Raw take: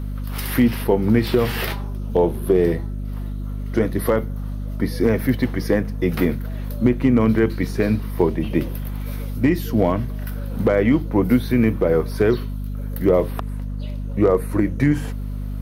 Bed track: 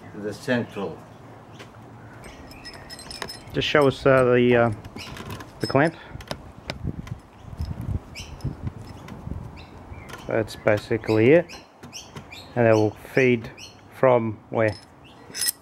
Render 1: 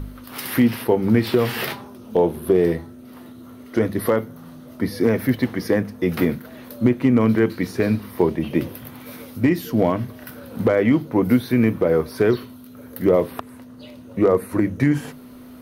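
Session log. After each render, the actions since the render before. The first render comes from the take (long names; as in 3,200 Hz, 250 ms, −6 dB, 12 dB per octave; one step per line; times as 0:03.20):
hum removal 50 Hz, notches 4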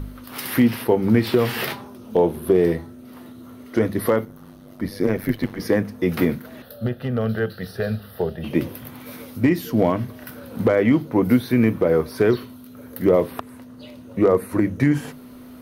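0:04.25–0:05.60: amplitude modulation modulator 97 Hz, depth 60%
0:06.62–0:08.44: phaser with its sweep stopped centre 1,500 Hz, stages 8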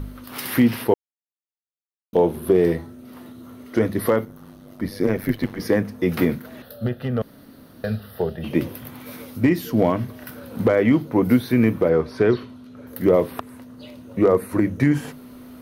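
0:00.94–0:02.13: silence
0:07.22–0:07.84: fill with room tone
0:11.89–0:12.87: high-frequency loss of the air 78 metres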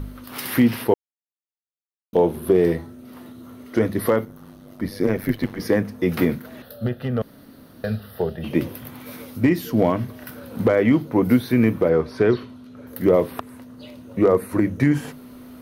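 no processing that can be heard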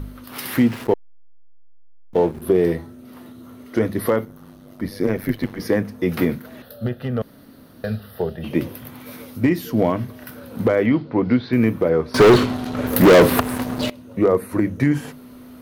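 0:00.52–0:02.42: slack as between gear wheels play −28.5 dBFS
0:10.86–0:11.53: Chebyshev low-pass filter 4,800 Hz, order 4
0:12.14–0:13.90: leveller curve on the samples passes 5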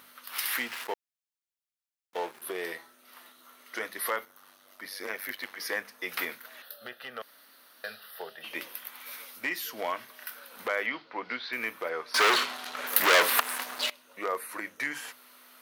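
high-pass filter 1,300 Hz 12 dB per octave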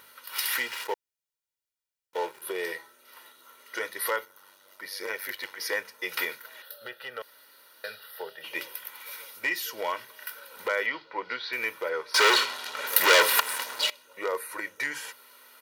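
dynamic equaliser 5,100 Hz, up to +3 dB, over −43 dBFS, Q 0.72
comb filter 2.1 ms, depth 61%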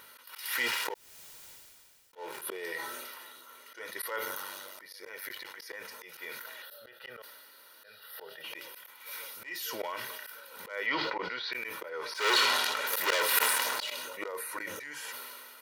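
volume swells 310 ms
level that may fall only so fast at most 25 dB per second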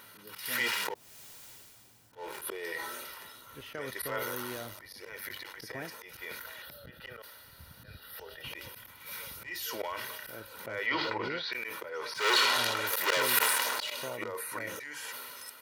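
mix in bed track −24 dB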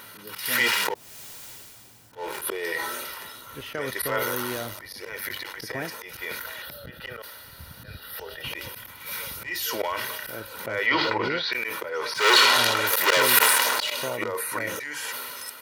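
level +8.5 dB
brickwall limiter −3 dBFS, peak gain reduction 1.5 dB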